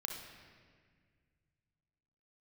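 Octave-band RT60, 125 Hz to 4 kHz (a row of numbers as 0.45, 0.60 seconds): 3.2, 2.5, 2.0, 1.6, 1.9, 1.4 seconds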